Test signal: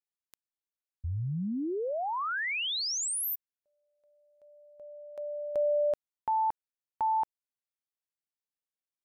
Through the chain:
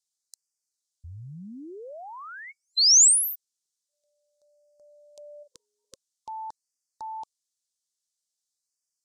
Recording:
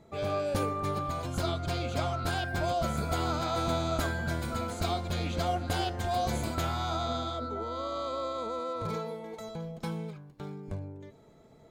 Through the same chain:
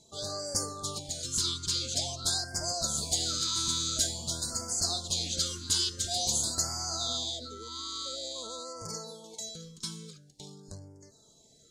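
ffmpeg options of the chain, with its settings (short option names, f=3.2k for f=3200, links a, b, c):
-af "aexciter=amount=12.1:drive=3.4:freq=3.4k,lowpass=f=7.1k:t=q:w=1.5,afftfilt=real='re*(1-between(b*sr/1024,630*pow(3200/630,0.5+0.5*sin(2*PI*0.48*pts/sr))/1.41,630*pow(3200/630,0.5+0.5*sin(2*PI*0.48*pts/sr))*1.41))':imag='im*(1-between(b*sr/1024,630*pow(3200/630,0.5+0.5*sin(2*PI*0.48*pts/sr))/1.41,630*pow(3200/630,0.5+0.5*sin(2*PI*0.48*pts/sr))*1.41))':win_size=1024:overlap=0.75,volume=-8.5dB"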